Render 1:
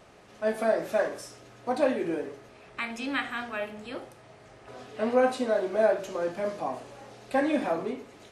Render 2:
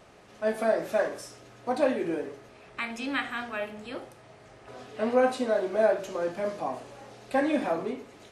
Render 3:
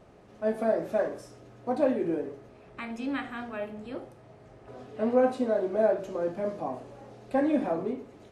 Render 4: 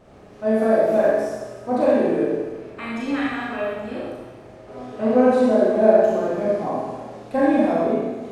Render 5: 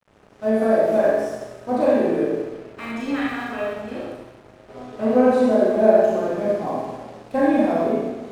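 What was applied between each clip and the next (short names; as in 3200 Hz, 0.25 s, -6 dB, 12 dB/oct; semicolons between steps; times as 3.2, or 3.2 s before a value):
nothing audible
tilt shelf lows +6.5 dB, about 940 Hz; gain -3.5 dB
Schroeder reverb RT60 1.3 s, combs from 28 ms, DRR -6 dB; gain +2.5 dB
crossover distortion -46.5 dBFS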